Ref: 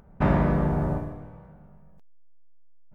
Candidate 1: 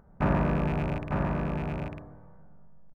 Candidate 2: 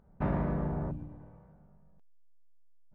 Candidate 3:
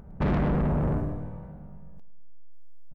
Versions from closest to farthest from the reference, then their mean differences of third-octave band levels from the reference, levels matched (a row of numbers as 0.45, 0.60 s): 2, 3, 1; 2.0, 3.0, 9.0 dB